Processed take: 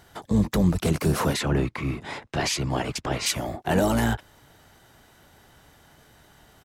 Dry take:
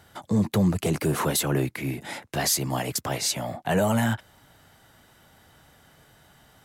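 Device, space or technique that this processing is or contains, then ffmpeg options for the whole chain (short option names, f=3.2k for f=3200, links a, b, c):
octave pedal: -filter_complex "[0:a]asplit=3[a][b][c];[a]afade=t=out:st=1.33:d=0.02[d];[b]lowpass=5.7k,afade=t=in:st=1.33:d=0.02,afade=t=out:st=3.25:d=0.02[e];[c]afade=t=in:st=3.25:d=0.02[f];[d][e][f]amix=inputs=3:normalize=0,asplit=2[g][h];[h]asetrate=22050,aresample=44100,atempo=2,volume=-4dB[i];[g][i]amix=inputs=2:normalize=0"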